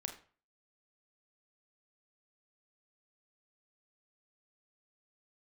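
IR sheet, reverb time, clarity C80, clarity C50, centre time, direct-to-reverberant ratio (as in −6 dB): 0.40 s, 14.5 dB, 10.0 dB, 15 ms, 4.5 dB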